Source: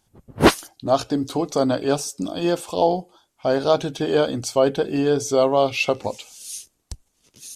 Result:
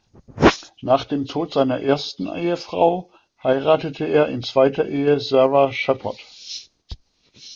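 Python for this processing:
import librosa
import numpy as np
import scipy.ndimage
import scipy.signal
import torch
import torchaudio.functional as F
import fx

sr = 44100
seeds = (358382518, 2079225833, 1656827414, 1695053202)

p1 = fx.freq_compress(x, sr, knee_hz=1700.0, ratio=1.5)
p2 = fx.level_steps(p1, sr, step_db=18)
p3 = p1 + (p2 * 10.0 ** (-1.5 / 20.0))
y = p3 * 10.0 ** (-1.5 / 20.0)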